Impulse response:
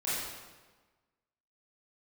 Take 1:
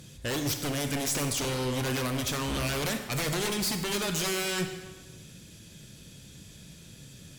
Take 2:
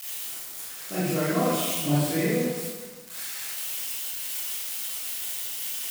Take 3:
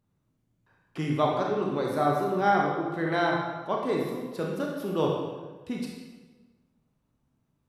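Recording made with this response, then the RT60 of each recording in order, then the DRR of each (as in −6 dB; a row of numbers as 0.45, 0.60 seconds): 2; 1.3, 1.3, 1.3 seconds; 5.5, −11.0, −1.5 decibels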